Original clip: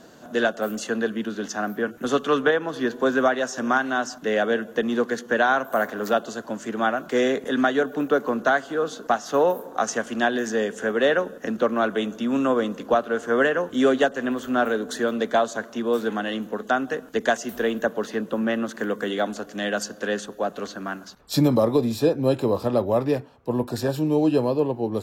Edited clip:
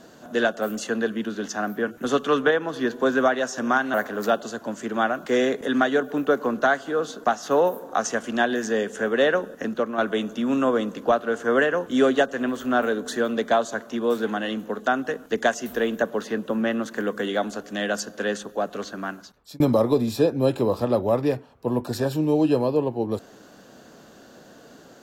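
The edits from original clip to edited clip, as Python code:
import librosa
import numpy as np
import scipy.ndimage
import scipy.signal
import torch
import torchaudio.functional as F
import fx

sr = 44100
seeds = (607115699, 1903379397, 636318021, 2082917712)

y = fx.edit(x, sr, fx.cut(start_s=3.94, length_s=1.83),
    fx.fade_out_to(start_s=11.44, length_s=0.37, floor_db=-7.5),
    fx.fade_out_span(start_s=20.92, length_s=0.51), tone=tone)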